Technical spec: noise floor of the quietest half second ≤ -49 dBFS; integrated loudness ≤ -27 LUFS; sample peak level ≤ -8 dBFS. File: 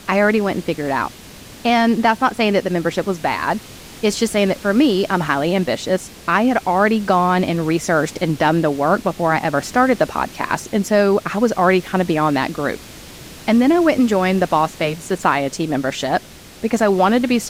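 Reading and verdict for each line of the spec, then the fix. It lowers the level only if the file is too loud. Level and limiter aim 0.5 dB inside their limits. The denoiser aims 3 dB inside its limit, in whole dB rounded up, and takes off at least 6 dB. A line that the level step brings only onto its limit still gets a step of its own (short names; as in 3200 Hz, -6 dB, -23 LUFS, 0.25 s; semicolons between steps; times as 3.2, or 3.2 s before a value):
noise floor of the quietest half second -39 dBFS: fail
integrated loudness -18.0 LUFS: fail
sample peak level -2.0 dBFS: fail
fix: denoiser 6 dB, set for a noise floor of -39 dBFS; gain -9.5 dB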